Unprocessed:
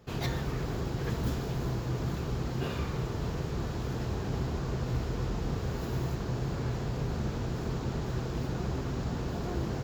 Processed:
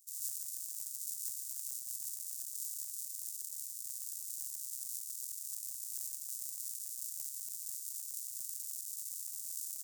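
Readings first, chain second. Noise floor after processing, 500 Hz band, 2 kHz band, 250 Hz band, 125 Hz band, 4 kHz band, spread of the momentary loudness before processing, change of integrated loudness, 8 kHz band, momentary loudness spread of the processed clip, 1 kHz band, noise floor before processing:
-46 dBFS, under -40 dB, under -40 dB, under -40 dB, under -40 dB, -8.5 dB, 1 LU, -5.5 dB, +12.5 dB, 2 LU, under -40 dB, -36 dBFS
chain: sorted samples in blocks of 128 samples; inverse Chebyshev high-pass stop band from 2.3 kHz, stop band 60 dB; trim +7.5 dB

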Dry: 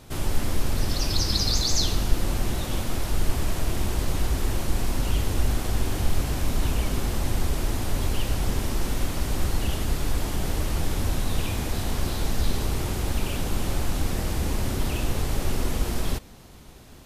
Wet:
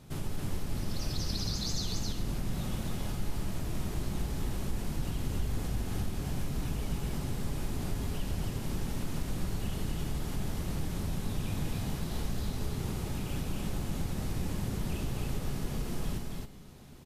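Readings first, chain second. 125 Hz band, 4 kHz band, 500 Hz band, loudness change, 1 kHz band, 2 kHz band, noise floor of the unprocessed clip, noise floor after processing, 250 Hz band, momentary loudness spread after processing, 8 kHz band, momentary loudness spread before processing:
-6.5 dB, -11.0 dB, -9.0 dB, -8.5 dB, -10.5 dB, -10.5 dB, -45 dBFS, -39 dBFS, -5.0 dB, 2 LU, -11.0 dB, 4 LU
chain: peaking EQ 160 Hz +10 dB 1.2 oct; compression 2.5:1, threshold -23 dBFS, peak gain reduction 9 dB; feedback comb 420 Hz, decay 0.78 s, mix 70%; on a send: delay 268 ms -3 dB; on the sum: trim +1 dB

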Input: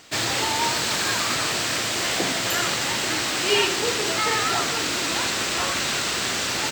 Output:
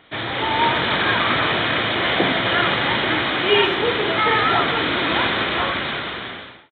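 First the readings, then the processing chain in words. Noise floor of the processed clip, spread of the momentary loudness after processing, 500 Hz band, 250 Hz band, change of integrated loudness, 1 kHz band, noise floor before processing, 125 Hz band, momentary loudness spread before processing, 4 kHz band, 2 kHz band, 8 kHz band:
-39 dBFS, 8 LU, +6.0 dB, +6.0 dB, +3.5 dB, +6.0 dB, -26 dBFS, +6.0 dB, 3 LU, +1.5 dB, +5.5 dB, under -40 dB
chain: fade out at the end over 1.48 s; band-stop 2.7 kHz, Q 7.9; level rider gain up to 8 dB; resampled via 8 kHz; speakerphone echo 130 ms, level -25 dB

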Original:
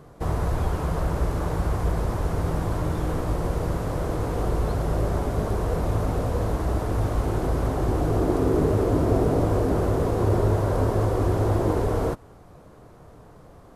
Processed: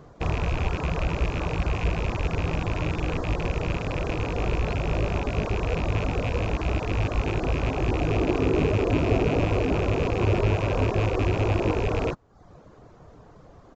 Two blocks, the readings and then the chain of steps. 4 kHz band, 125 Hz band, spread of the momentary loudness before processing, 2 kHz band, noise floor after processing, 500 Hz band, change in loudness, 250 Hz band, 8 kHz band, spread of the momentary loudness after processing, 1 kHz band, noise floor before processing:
+6.0 dB, -1.5 dB, 5 LU, +6.5 dB, -51 dBFS, -1.5 dB, -1.0 dB, -1.5 dB, -4.5 dB, 5 LU, -1.5 dB, -49 dBFS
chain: rattle on loud lows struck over -26 dBFS, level -21 dBFS; reverb removal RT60 0.54 s; resampled via 16 kHz

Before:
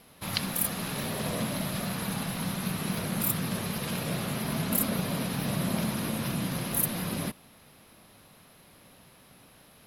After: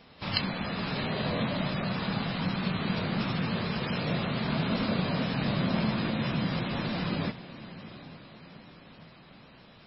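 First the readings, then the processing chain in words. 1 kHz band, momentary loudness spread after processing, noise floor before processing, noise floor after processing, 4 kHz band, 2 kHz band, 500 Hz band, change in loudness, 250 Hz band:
+2.5 dB, 16 LU, -57 dBFS, -54 dBFS, +1.5 dB, +2.5 dB, +2.0 dB, 0.0 dB, +1.5 dB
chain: echo that smears into a reverb 774 ms, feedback 48%, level -15 dB; trim +2 dB; MP3 16 kbps 16 kHz

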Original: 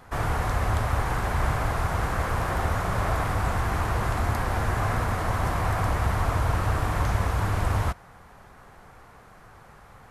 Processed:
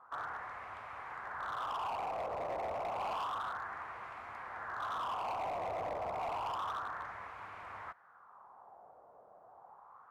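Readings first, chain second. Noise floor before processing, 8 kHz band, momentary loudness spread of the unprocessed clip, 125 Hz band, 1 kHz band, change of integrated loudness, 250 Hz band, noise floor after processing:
-51 dBFS, under -20 dB, 2 LU, -33.5 dB, -8.5 dB, -13.5 dB, -23.0 dB, -60 dBFS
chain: wah-wah 0.3 Hz 600–2300 Hz, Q 3.2; resonant high shelf 1.5 kHz -9.5 dB, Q 1.5; overload inside the chain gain 33 dB; trim -1.5 dB

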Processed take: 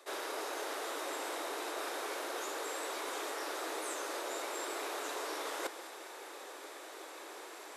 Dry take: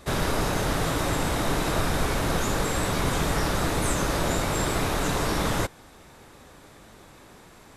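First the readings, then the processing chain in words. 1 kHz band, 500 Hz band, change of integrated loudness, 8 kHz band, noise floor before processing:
-11.0 dB, -11.0 dB, -14.0 dB, -11.0 dB, -50 dBFS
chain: steep high-pass 330 Hz 48 dB/octave; reverse; compression 10:1, threshold -40 dBFS, peak gain reduction 16 dB; reverse; two-band feedback delay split 1.4 kHz, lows 136 ms, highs 203 ms, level -13 dB; trim +3 dB

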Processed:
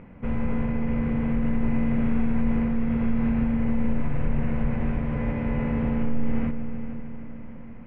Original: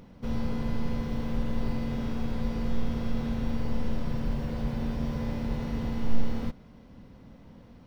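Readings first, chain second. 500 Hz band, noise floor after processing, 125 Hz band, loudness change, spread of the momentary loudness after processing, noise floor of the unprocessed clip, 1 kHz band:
+4.5 dB, -38 dBFS, +5.0 dB, +6.0 dB, 11 LU, -52 dBFS, +4.0 dB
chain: resonant high shelf 3.1 kHz -10 dB, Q 3; peak limiter -21.5 dBFS, peak gain reduction 10.5 dB; distance through air 230 m; on a send: multi-head delay 153 ms, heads all three, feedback 62%, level -16 dB; on the sum: trim +4.5 dB

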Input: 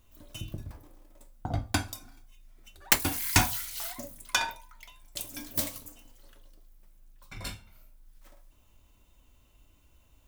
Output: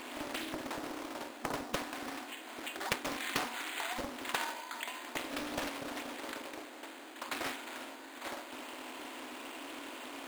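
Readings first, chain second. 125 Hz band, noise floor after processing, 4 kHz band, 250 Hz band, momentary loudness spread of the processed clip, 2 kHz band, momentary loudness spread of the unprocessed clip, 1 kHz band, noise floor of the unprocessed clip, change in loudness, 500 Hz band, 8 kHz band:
-18.0 dB, -49 dBFS, -5.0 dB, -1.5 dB, 9 LU, -3.5 dB, 22 LU, -1.5 dB, -62 dBFS, -9.5 dB, +3.5 dB, -11.0 dB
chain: spectral levelling over time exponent 0.6; hum notches 60/120/180/240/300 Hz; FFT band-pass 230–3900 Hz; compression 3:1, threshold -44 dBFS, peak gain reduction 18.5 dB; distance through air 190 m; repeats whose band climbs or falls 243 ms, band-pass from 410 Hz, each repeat 0.7 oct, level -12 dB; careless resampling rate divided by 8×, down none, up hold; loudspeaker Doppler distortion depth 0.97 ms; trim +8 dB

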